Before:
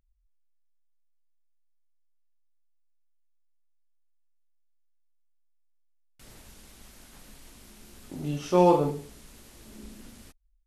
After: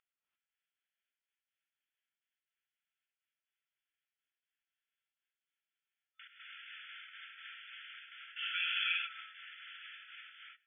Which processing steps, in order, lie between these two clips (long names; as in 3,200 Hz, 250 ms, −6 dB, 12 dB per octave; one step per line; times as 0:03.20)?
gate pattern "x.x.xxx." 122 BPM −24 dB
brick-wall band-pass 1,300–3,500 Hz
reverb whose tail is shaped and stops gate 370 ms rising, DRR −4 dB
level +7 dB